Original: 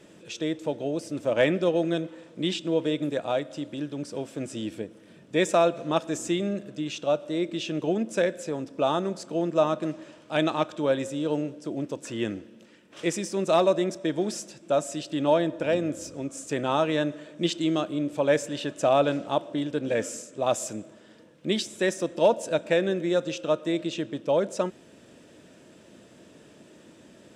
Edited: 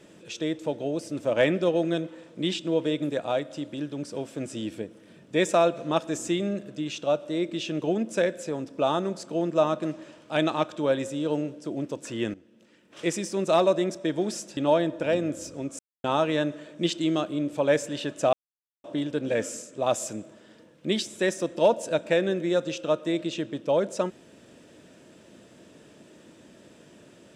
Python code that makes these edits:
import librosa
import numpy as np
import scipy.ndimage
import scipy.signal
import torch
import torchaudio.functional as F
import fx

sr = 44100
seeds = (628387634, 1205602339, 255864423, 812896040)

y = fx.edit(x, sr, fx.fade_in_from(start_s=12.34, length_s=0.74, floor_db=-15.0),
    fx.cut(start_s=14.57, length_s=0.6),
    fx.silence(start_s=16.39, length_s=0.25),
    fx.silence(start_s=18.93, length_s=0.51), tone=tone)